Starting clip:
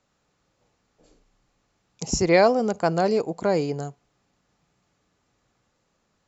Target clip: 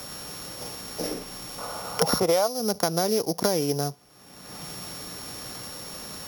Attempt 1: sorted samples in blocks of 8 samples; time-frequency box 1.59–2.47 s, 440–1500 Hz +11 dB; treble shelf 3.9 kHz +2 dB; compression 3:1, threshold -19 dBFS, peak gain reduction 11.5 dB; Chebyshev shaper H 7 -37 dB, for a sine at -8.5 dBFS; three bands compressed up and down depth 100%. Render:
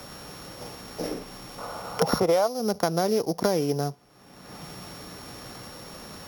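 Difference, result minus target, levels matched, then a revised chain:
8 kHz band -8.0 dB
sorted samples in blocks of 8 samples; time-frequency box 1.59–2.47 s, 440–1500 Hz +11 dB; treble shelf 3.9 kHz +11 dB; compression 3:1, threshold -19 dBFS, peak gain reduction 12 dB; Chebyshev shaper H 7 -37 dB, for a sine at -8.5 dBFS; three bands compressed up and down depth 100%

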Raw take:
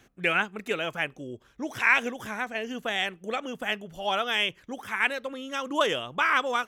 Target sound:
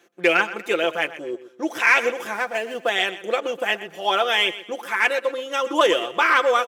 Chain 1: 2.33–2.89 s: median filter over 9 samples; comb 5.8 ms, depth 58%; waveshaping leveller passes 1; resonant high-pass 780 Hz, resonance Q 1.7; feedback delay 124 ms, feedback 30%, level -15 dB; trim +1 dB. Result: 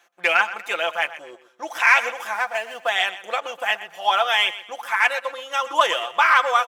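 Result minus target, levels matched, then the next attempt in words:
500 Hz band -6.0 dB
2.33–2.89 s: median filter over 9 samples; comb 5.8 ms, depth 58%; waveshaping leveller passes 1; resonant high-pass 380 Hz, resonance Q 1.7; feedback delay 124 ms, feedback 30%, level -15 dB; trim +1 dB

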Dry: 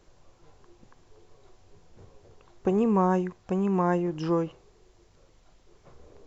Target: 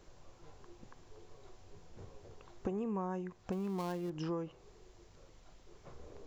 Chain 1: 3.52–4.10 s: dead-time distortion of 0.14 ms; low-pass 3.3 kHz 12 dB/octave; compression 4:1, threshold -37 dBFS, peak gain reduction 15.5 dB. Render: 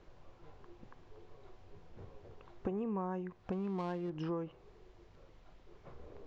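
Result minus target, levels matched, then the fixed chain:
4 kHz band -4.0 dB
3.52–4.10 s: dead-time distortion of 0.14 ms; compression 4:1, threshold -37 dBFS, peak gain reduction 15.5 dB

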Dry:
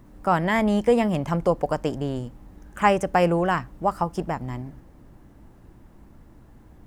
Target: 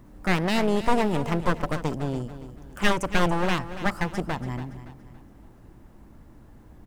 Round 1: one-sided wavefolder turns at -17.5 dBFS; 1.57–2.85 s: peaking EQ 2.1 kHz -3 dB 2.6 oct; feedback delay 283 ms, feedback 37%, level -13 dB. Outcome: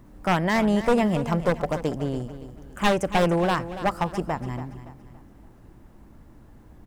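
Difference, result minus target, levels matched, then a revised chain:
one-sided wavefolder: distortion -11 dB
one-sided wavefolder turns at -27 dBFS; 1.57–2.85 s: peaking EQ 2.1 kHz -3 dB 2.6 oct; feedback delay 283 ms, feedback 37%, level -13 dB

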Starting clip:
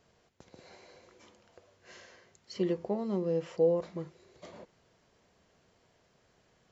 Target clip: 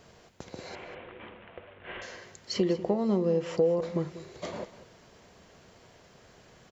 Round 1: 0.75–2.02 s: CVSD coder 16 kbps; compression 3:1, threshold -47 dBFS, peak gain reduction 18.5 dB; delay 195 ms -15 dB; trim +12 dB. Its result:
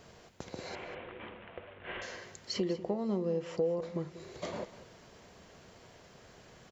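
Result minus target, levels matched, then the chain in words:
compression: peak gain reduction +6.5 dB
0.75–2.02 s: CVSD coder 16 kbps; compression 3:1, threshold -37.5 dBFS, peak gain reduction 12 dB; delay 195 ms -15 dB; trim +12 dB

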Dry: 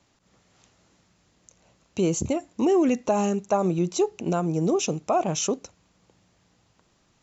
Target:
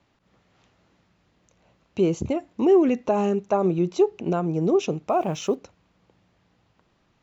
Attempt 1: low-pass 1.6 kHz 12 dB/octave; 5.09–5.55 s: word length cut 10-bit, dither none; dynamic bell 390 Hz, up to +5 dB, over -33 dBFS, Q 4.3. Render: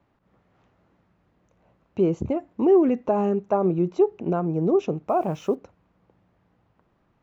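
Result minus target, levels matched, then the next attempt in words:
4 kHz band -10.0 dB
low-pass 3.5 kHz 12 dB/octave; 5.09–5.55 s: word length cut 10-bit, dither none; dynamic bell 390 Hz, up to +5 dB, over -33 dBFS, Q 4.3

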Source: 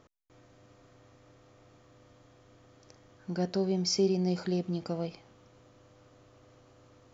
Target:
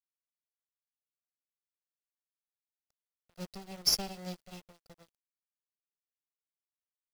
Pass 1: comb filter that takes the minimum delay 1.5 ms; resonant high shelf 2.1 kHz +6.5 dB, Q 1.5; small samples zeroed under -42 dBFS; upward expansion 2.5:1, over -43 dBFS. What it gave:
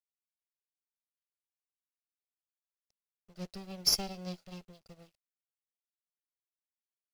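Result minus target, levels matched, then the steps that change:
small samples zeroed: distortion -11 dB
change: small samples zeroed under -32.5 dBFS

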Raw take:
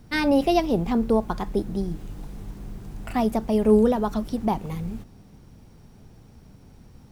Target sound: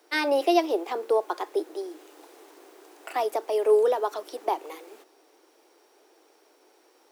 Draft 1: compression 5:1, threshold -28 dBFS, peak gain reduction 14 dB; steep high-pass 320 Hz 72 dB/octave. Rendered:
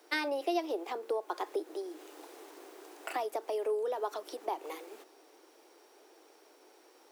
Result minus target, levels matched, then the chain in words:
compression: peak gain reduction +14 dB
steep high-pass 320 Hz 72 dB/octave

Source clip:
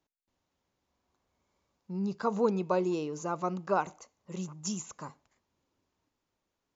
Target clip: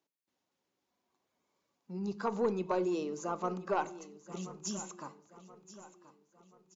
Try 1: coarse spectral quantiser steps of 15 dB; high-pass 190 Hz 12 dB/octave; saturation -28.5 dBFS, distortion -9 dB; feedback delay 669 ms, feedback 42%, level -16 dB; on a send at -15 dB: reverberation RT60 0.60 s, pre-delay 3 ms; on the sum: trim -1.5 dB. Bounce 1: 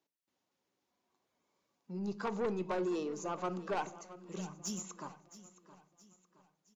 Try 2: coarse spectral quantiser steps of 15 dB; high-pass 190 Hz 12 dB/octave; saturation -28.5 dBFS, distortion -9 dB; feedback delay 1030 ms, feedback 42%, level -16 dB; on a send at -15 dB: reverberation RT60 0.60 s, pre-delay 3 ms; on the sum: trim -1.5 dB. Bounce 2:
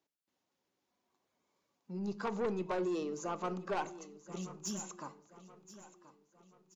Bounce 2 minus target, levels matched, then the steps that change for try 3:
saturation: distortion +9 dB
change: saturation -19.5 dBFS, distortion -19 dB

